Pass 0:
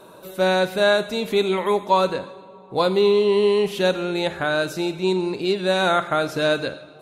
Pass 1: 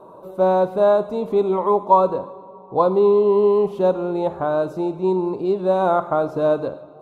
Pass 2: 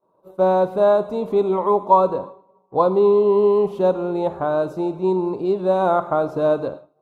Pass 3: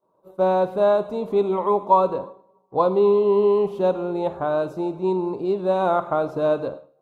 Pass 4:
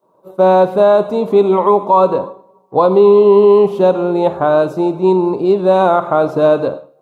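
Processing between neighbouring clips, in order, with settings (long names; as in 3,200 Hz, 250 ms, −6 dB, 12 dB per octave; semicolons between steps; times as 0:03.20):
drawn EQ curve 200 Hz 0 dB, 1,100 Hz +5 dB, 1,700 Hz −18 dB
downward expander −29 dBFS
dynamic equaliser 2,700 Hz, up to +5 dB, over −38 dBFS, Q 1.3; tuned comb filter 67 Hz, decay 0.6 s, harmonics all, mix 30%
high-pass filter 96 Hz; boost into a limiter +11.5 dB; level −1 dB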